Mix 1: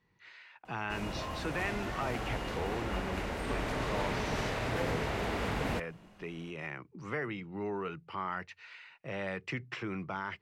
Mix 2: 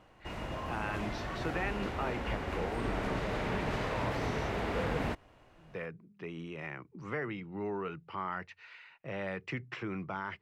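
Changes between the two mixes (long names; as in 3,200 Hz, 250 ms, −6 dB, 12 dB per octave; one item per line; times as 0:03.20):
background: entry −0.65 s
master: add high-shelf EQ 4,000 Hz −7.5 dB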